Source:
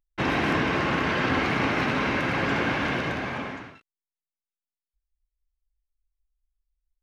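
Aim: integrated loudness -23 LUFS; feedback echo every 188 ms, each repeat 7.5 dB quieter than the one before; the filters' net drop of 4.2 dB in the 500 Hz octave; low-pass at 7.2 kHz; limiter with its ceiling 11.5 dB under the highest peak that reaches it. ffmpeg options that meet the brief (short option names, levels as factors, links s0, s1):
-af "lowpass=7200,equalizer=f=500:t=o:g=-5.5,alimiter=limit=0.0631:level=0:latency=1,aecho=1:1:188|376|564|752|940:0.422|0.177|0.0744|0.0312|0.0131,volume=2.66"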